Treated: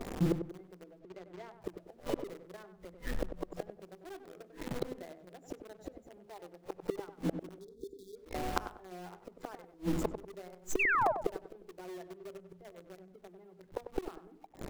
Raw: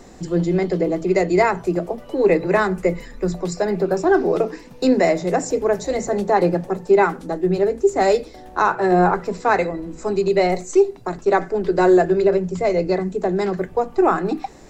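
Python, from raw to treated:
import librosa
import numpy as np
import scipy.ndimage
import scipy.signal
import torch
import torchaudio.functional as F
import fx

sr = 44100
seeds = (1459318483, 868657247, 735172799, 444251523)

p1 = fx.highpass(x, sr, hz=280.0, slope=12, at=(6.26, 6.66))
p2 = fx.spec_gate(p1, sr, threshold_db=-20, keep='strong')
p3 = fx.high_shelf(p2, sr, hz=2800.0, db=-10.0)
p4 = fx.quant_companded(p3, sr, bits=2)
p5 = p3 + (p4 * 10.0 ** (-7.5 / 20.0))
p6 = fx.gate_flip(p5, sr, shuts_db=-17.0, range_db=-35)
p7 = fx.brickwall_bandstop(p6, sr, low_hz=500.0, high_hz=3300.0, at=(7.59, 8.16))
p8 = fx.spec_paint(p7, sr, seeds[0], shape='fall', start_s=10.79, length_s=0.33, low_hz=580.0, high_hz=2800.0, level_db=-26.0)
p9 = p8 + fx.echo_filtered(p8, sr, ms=96, feedback_pct=34, hz=1300.0, wet_db=-8.0, dry=0)
p10 = fx.resample_linear(p9, sr, factor=4, at=(0.99, 1.62))
y = p10 * 10.0 ** (-2.5 / 20.0)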